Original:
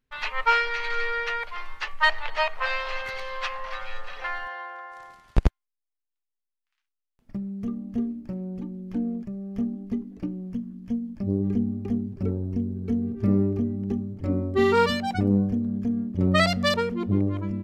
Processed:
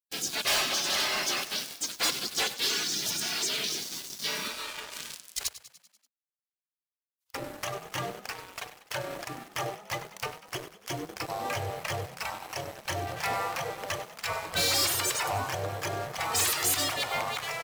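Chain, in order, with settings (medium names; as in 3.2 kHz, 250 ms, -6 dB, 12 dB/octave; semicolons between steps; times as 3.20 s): high-pass 190 Hz 24 dB/octave; hum notches 60/120/180/240 Hz; spectral gate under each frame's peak -30 dB weak; waveshaping leveller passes 5; in parallel at +3 dB: peak limiter -36 dBFS, peak gain reduction 8 dB; on the sum: treble shelf 5.3 kHz +6 dB; on a send: frequency-shifting echo 97 ms, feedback 59%, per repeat +34 Hz, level -15 dB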